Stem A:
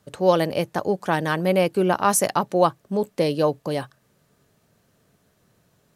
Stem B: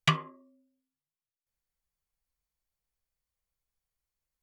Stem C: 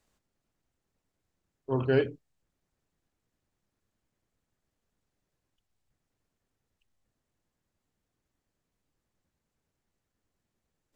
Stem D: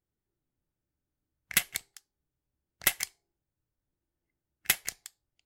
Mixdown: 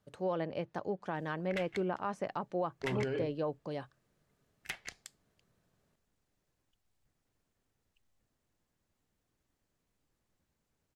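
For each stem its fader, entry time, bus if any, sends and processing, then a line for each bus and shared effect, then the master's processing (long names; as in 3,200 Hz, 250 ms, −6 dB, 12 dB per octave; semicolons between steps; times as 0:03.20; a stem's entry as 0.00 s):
−13.5 dB, 0.00 s, bus A, no send, high-shelf EQ 5,200 Hz −6.5 dB
muted
+1.0 dB, 1.15 s, no bus, no send, brickwall limiter −25.5 dBFS, peak gain reduction 11.5 dB; downward compressor, threshold −33 dBFS, peak gain reduction 4 dB
−3.5 dB, 0.00 s, bus A, no send, no processing
bus A: 0.0 dB, treble cut that deepens with the level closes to 2,600 Hz, closed at −31 dBFS; brickwall limiter −24 dBFS, peak gain reduction 8 dB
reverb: not used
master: no processing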